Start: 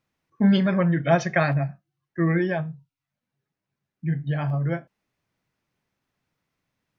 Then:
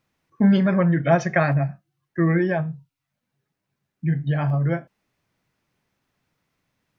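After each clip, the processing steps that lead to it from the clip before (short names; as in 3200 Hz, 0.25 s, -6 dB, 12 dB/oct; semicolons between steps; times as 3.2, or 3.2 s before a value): dynamic EQ 3700 Hz, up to -8 dB, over -47 dBFS, Q 1.4; in parallel at -2.5 dB: compressor, threshold -26 dBFS, peak gain reduction 12 dB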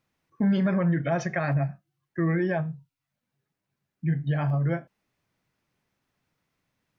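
limiter -13 dBFS, peak gain reduction 7 dB; gain -3.5 dB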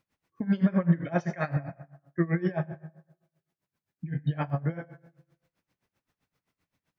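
plate-style reverb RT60 0.96 s, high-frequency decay 0.6×, DRR 8 dB; dB-linear tremolo 7.7 Hz, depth 21 dB; gain +2 dB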